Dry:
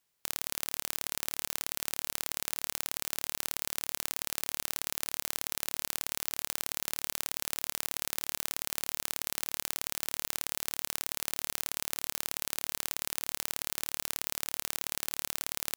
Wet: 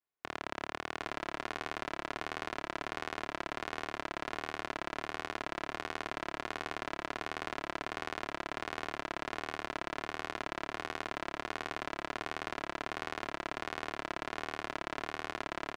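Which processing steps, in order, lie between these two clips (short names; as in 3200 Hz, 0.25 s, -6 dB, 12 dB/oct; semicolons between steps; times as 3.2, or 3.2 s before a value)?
LPF 1600 Hz 12 dB/oct; low shelf 120 Hz -10 dB; comb 2.9 ms, depth 39%; vibrato 1.4 Hz 91 cents; echo 0.769 s -8.5 dB; three-band expander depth 40%; gain +7.5 dB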